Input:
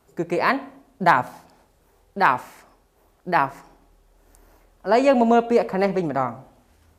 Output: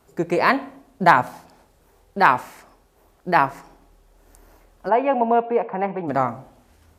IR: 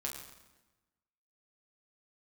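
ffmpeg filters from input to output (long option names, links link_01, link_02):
-filter_complex "[0:a]asplit=3[link_01][link_02][link_03];[link_01]afade=type=out:start_time=4.88:duration=0.02[link_04];[link_02]highpass=250,equalizer=frequency=250:width_type=q:width=4:gain=-7,equalizer=frequency=380:width_type=q:width=4:gain=-7,equalizer=frequency=590:width_type=q:width=4:gain=-8,equalizer=frequency=850:width_type=q:width=4:gain=4,equalizer=frequency=1300:width_type=q:width=4:gain=-8,equalizer=frequency=1900:width_type=q:width=4:gain=-7,lowpass=frequency=2200:width=0.5412,lowpass=frequency=2200:width=1.3066,afade=type=in:start_time=4.88:duration=0.02,afade=type=out:start_time=6.07:duration=0.02[link_05];[link_03]afade=type=in:start_time=6.07:duration=0.02[link_06];[link_04][link_05][link_06]amix=inputs=3:normalize=0,volume=2.5dB"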